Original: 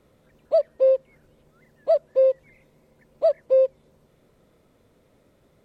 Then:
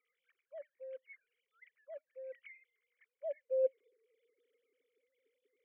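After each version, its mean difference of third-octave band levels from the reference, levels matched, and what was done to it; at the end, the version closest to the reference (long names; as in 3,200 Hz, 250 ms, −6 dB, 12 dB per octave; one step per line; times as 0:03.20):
4.5 dB: three sine waves on the formant tracks
reversed playback
downward compressor 10 to 1, threshold −27 dBFS, peak gain reduction 13.5 dB
reversed playback
high-pass filter sweep 1,100 Hz → 210 Hz, 0:02.91–0:04.81
formant filter i
level +16.5 dB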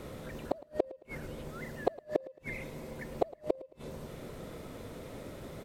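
10.5 dB: hum removal 202.7 Hz, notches 32
brickwall limiter −20.5 dBFS, peak gain reduction 9.5 dB
gate with flip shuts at −29 dBFS, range −41 dB
repeating echo 110 ms, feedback 35%, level −20 dB
level +16 dB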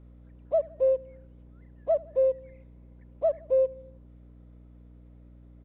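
3.5 dB: high-shelf EQ 2,600 Hz −9.5 dB
mains hum 60 Hz, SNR 20 dB
on a send: repeating echo 80 ms, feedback 58%, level −23 dB
on the sum: downsampling to 8,000 Hz
level −5 dB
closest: third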